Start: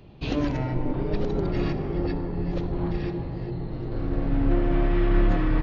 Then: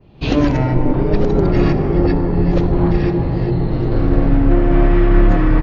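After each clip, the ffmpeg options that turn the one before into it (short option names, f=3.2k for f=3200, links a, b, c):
-af "adynamicequalizer=threshold=0.00178:dfrequency=3600:dqfactor=1.3:tfrequency=3600:tqfactor=1.3:attack=5:release=100:ratio=0.375:range=3:mode=cutabove:tftype=bell,dynaudnorm=f=130:g=3:m=14.5dB"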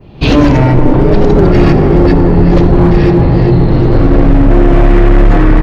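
-filter_complex "[0:a]asplit=2[a][b];[b]alimiter=limit=-12.5dB:level=0:latency=1:release=13,volume=2.5dB[c];[a][c]amix=inputs=2:normalize=0,volume=5.5dB,asoftclip=hard,volume=-5.5dB,volume=4dB"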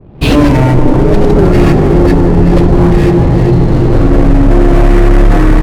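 -af "adynamicsmooth=sensitivity=5:basefreq=540"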